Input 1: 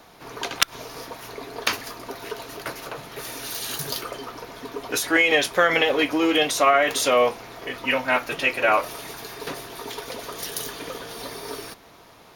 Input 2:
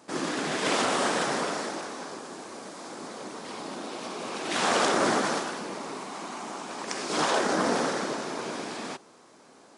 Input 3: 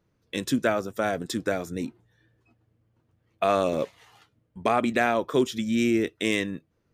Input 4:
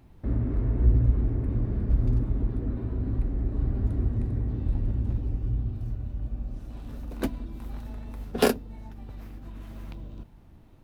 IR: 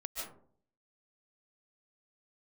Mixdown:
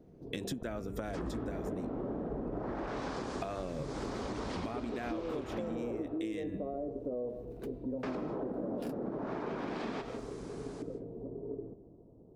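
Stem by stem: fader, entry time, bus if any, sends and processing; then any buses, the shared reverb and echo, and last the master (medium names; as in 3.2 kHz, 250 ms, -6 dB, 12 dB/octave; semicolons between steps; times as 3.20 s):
-2.0 dB, 0.00 s, bus A, send -14.5 dB, inverse Chebyshev low-pass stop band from 2.6 kHz, stop band 80 dB
-0.5 dB, 1.05 s, muted 6.02–8.03 s, bus B, send -8 dB, low-pass that closes with the level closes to 440 Hz, closed at -25 dBFS
-2.0 dB, 0.00 s, bus B, no send, de-hum 197.6 Hz, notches 21
-18.5 dB, 0.40 s, bus A, no send, none
bus A: 0.0 dB, peak limiter -25.5 dBFS, peak gain reduction 8.5 dB
bus B: 0.0 dB, bass shelf 350 Hz +10.5 dB; compression, threshold -32 dBFS, peak gain reduction 18 dB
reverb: on, RT60 0.55 s, pre-delay 105 ms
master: compression, threshold -34 dBFS, peak gain reduction 10.5 dB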